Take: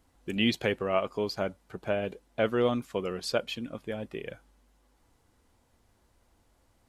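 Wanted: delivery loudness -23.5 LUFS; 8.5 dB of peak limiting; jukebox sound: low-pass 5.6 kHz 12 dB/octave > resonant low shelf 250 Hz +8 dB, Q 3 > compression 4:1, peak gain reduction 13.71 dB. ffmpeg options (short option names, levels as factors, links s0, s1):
-af "alimiter=limit=0.0944:level=0:latency=1,lowpass=5600,lowshelf=f=250:t=q:w=3:g=8,acompressor=threshold=0.02:ratio=4,volume=5.31"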